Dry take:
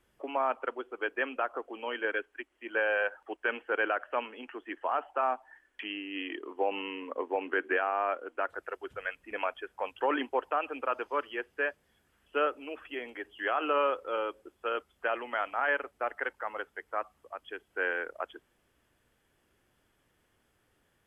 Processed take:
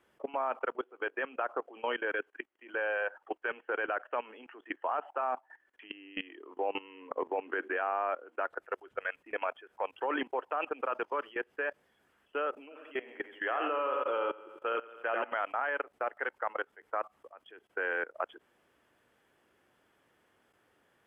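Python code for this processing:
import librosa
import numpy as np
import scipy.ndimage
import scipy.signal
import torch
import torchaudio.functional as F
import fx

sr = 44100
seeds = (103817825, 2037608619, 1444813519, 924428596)

y = fx.echo_feedback(x, sr, ms=87, feedback_pct=50, wet_db=-7.0, at=(12.7, 15.32), fade=0.02)
y = fx.highpass(y, sr, hz=390.0, slope=6)
y = fx.level_steps(y, sr, step_db=19)
y = fx.high_shelf(y, sr, hz=2900.0, db=-10.5)
y = y * 10.0 ** (7.5 / 20.0)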